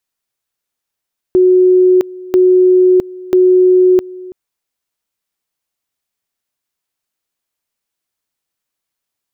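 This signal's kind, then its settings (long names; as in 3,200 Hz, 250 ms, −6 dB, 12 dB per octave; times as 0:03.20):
tone at two levels in turn 367 Hz −5 dBFS, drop 21 dB, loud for 0.66 s, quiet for 0.33 s, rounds 3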